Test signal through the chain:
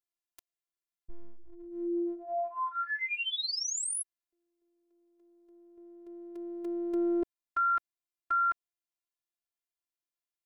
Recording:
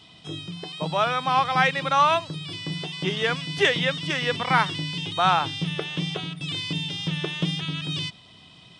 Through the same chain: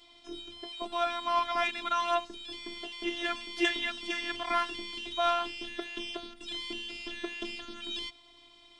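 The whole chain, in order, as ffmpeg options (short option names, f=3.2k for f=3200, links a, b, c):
-af "acontrast=38,afftfilt=real='hypot(re,im)*cos(PI*b)':imag='0':win_size=512:overlap=0.75,volume=-9dB"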